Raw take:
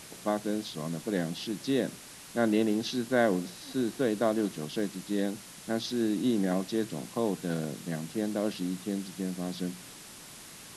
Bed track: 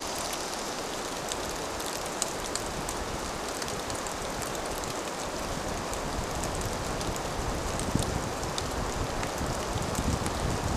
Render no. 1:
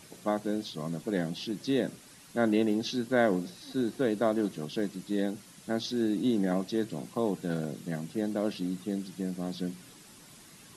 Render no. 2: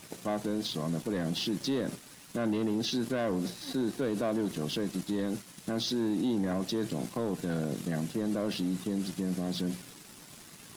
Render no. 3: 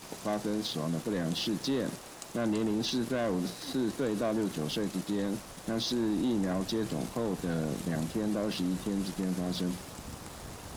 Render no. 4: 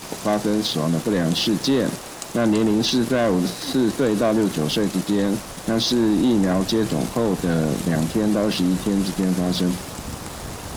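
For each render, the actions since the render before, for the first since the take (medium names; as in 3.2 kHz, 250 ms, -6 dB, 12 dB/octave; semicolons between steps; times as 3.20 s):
noise reduction 8 dB, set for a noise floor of -48 dBFS
waveshaping leveller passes 2; peak limiter -24 dBFS, peak gain reduction 11.5 dB
add bed track -15.5 dB
trim +11.5 dB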